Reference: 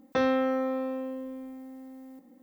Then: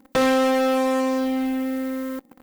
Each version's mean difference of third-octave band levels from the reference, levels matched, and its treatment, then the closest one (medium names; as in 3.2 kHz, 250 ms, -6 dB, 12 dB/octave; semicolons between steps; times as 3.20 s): 8.0 dB: hum notches 60/120/180/240/300/360/420/480/540 Hz; in parallel at -9 dB: fuzz box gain 45 dB, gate -50 dBFS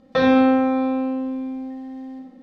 4.0 dB: resonant low-pass 4.2 kHz, resonance Q 1.5; simulated room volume 3900 m³, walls furnished, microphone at 6 m; trim +3.5 dB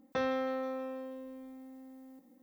1.5 dB: dynamic bell 300 Hz, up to -5 dB, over -42 dBFS, Q 2.1; on a send: feedback echo behind a high-pass 160 ms, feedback 62%, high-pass 4.1 kHz, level -6 dB; on the sum: trim -6 dB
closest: third